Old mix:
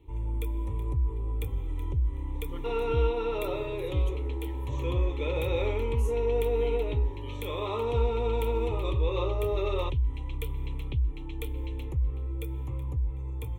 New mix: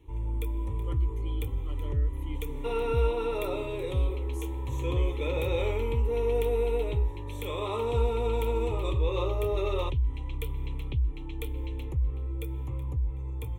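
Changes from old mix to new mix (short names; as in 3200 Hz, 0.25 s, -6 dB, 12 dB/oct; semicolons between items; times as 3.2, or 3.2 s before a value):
speech: entry -1.65 s; second sound: remove LPF 5900 Hz 24 dB/oct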